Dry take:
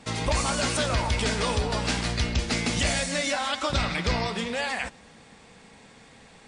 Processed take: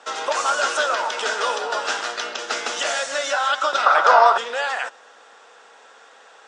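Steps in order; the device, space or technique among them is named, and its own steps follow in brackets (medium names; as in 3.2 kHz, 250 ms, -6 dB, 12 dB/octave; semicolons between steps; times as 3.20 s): 3.86–4.38 s: high-order bell 900 Hz +13.5 dB; phone speaker on a table (cabinet simulation 460–7000 Hz, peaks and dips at 1.4 kHz +9 dB, 2.2 kHz -10 dB, 4.4 kHz -8 dB); trim +5.5 dB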